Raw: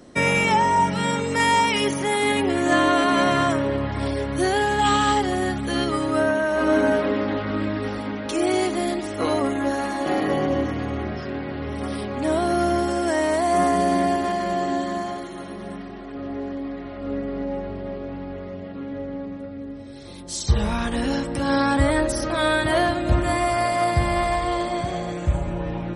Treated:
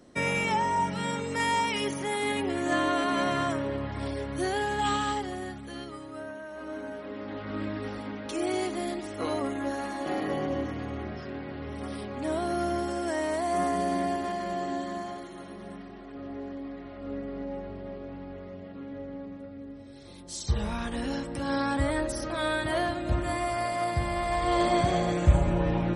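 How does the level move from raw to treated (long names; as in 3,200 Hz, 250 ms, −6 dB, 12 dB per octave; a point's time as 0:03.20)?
0:04.89 −8 dB
0:06.08 −19 dB
0:06.95 −19 dB
0:07.60 −8 dB
0:24.22 −8 dB
0:24.66 +1.5 dB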